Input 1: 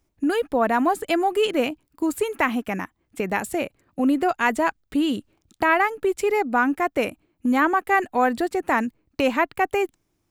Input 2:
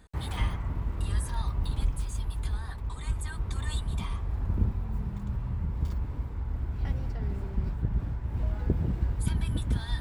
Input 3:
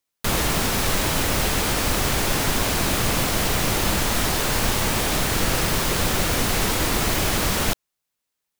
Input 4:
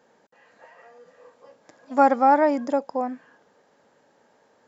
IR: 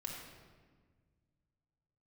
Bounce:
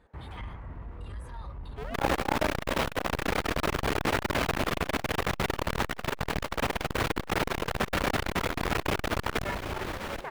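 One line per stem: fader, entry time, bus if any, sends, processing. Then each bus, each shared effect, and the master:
−18.0 dB, 1.55 s, send −7 dB, no echo send, sub-harmonics by changed cycles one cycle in 2, inverted
−3.0 dB, 0.00 s, no send, no echo send, soft clipping −23.5 dBFS, distortion −14 dB
+1.5 dB, 1.70 s, no send, echo send −10 dB, no processing
−7.0 dB, 0.00 s, no send, no echo send, high-shelf EQ 3,300 Hz −8.5 dB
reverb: on, RT60 1.6 s, pre-delay 3 ms
echo: repeating echo 774 ms, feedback 17%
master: bass and treble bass −5 dB, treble −15 dB; saturating transformer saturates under 510 Hz

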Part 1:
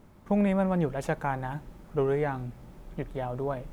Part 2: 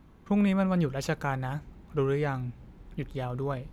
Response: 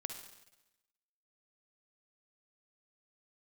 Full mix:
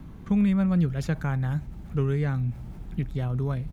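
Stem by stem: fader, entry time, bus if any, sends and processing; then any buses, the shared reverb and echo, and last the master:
−18.0 dB, 0.00 s, no send, level that may fall only so fast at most 20 dB per second
−3.5 dB, 0.4 ms, no send, bass and treble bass +11 dB, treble +2 dB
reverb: not used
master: multiband upward and downward compressor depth 40%

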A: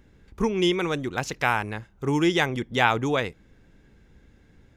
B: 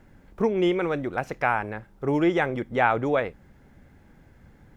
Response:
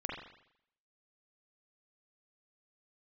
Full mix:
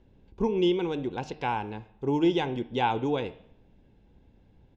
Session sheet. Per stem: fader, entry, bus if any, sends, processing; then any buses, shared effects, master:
−5.5 dB, 0.00 s, send −15.5 dB, no processing
−10.5 dB, 1.6 ms, polarity flipped, no send, no processing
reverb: on, RT60 0.75 s, pre-delay 41 ms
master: low-pass filter 3,400 Hz 12 dB per octave; flat-topped bell 1,600 Hz −10.5 dB 1.1 octaves; hum removal 152 Hz, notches 36

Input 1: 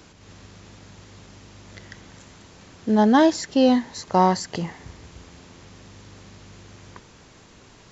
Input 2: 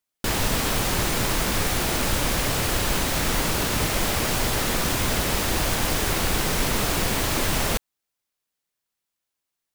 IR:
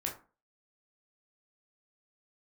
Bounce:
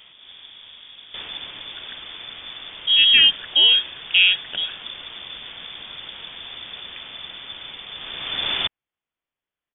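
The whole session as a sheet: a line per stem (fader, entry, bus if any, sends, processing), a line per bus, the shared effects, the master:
+2.0 dB, 0.00 s, no send, high-shelf EQ 3,500 Hz −9.5 dB
−0.5 dB, 0.90 s, no send, automatic ducking −14 dB, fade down 1.65 s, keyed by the first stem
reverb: not used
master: voice inversion scrambler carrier 3,500 Hz

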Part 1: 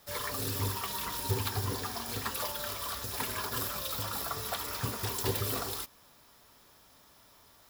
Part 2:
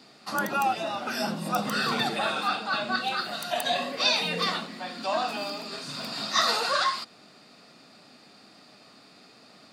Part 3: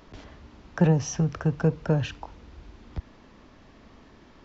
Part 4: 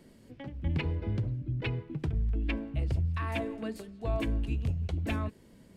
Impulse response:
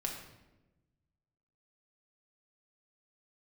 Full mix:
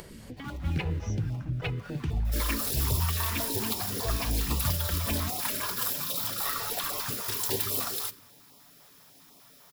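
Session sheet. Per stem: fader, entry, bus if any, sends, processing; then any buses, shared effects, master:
+0.5 dB, 2.25 s, send −13 dB, high-pass filter 220 Hz 6 dB per octave
−17.5 dB, 0.10 s, send −16 dB, each half-wave held at its own peak; bass and treble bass +5 dB, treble −12 dB; comb filter 6.9 ms, depth 73%; automatic ducking −11 dB, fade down 1.15 s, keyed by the third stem
−17.5 dB, 0.00 s, no send, upward compression, threshold −28 dBFS
+1.0 dB, 0.00 s, no send, upward compression, threshold −35 dBFS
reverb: on, RT60 1.1 s, pre-delay 5 ms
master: high-shelf EQ 6,000 Hz +4.5 dB; notch on a step sequencer 10 Hz 250–1,600 Hz

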